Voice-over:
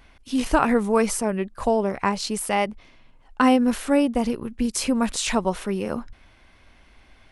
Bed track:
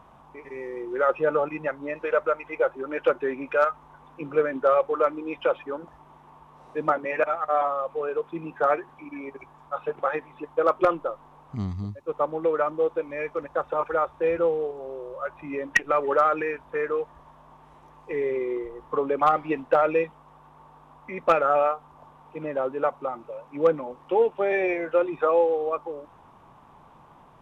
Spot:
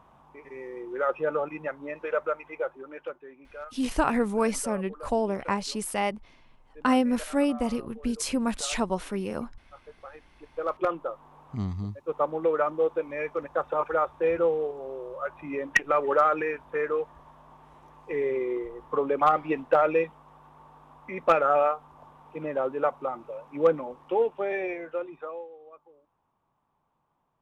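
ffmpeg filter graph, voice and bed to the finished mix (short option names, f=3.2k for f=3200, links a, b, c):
-filter_complex "[0:a]adelay=3450,volume=-5dB[a];[1:a]volume=14dB,afade=t=out:st=2.32:d=0.9:silence=0.177828,afade=t=in:st=10.28:d=1.11:silence=0.11885,afade=t=out:st=23.73:d=1.76:silence=0.0794328[b];[a][b]amix=inputs=2:normalize=0"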